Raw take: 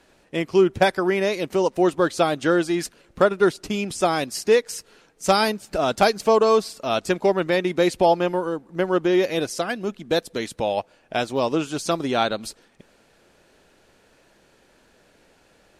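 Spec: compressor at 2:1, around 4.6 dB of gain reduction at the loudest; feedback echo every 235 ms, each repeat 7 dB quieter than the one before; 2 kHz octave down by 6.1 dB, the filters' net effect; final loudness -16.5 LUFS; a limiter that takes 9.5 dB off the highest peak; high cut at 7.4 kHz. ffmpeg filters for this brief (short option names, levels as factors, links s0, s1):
-af "lowpass=7400,equalizer=f=2000:t=o:g=-8.5,acompressor=threshold=0.0891:ratio=2,alimiter=limit=0.119:level=0:latency=1,aecho=1:1:235|470|705|940|1175:0.447|0.201|0.0905|0.0407|0.0183,volume=3.98"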